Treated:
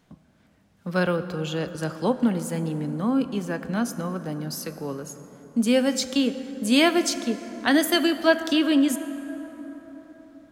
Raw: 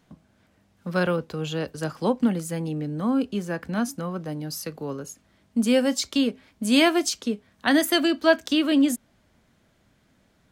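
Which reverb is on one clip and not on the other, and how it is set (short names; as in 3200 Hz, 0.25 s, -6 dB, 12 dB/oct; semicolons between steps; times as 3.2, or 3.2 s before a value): plate-style reverb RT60 4.9 s, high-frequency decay 0.4×, DRR 11 dB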